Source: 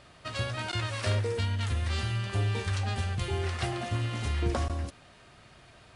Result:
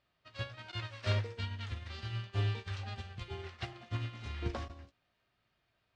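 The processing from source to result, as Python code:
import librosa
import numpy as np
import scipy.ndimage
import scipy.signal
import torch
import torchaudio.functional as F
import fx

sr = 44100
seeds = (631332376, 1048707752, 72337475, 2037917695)

y = fx.high_shelf(x, sr, hz=2200.0, db=10.0)
y = fx.quant_companded(y, sr, bits=6)
y = fx.air_absorb(y, sr, metres=180.0)
y = fx.doubler(y, sr, ms=18.0, db=-11.0)
y = fx.upward_expand(y, sr, threshold_db=-38.0, expansion=2.5)
y = F.gain(torch.from_numpy(y), -3.5).numpy()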